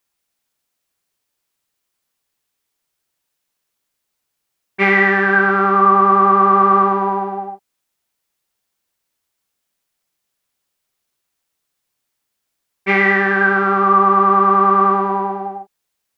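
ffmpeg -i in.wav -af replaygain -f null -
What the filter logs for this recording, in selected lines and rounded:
track_gain = -2.9 dB
track_peak = 0.570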